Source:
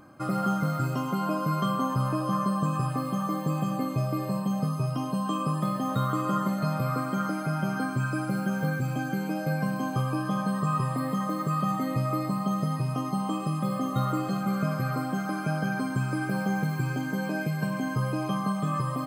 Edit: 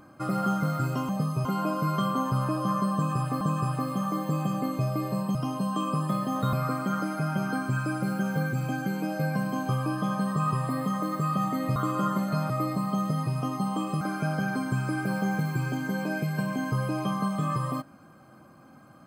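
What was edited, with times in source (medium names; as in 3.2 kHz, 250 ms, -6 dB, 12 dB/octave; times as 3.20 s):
2.58–3.05 s: loop, 2 plays
4.52–4.88 s: move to 1.09 s
6.06–6.80 s: move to 12.03 s
13.54–15.25 s: delete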